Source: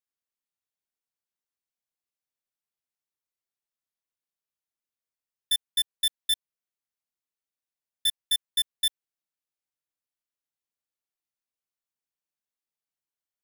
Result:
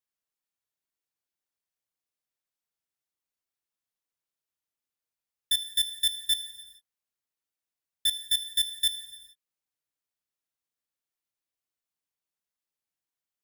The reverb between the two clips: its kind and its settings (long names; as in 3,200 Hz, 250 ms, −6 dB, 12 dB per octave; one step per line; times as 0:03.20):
reverb whose tail is shaped and stops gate 480 ms falling, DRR 10 dB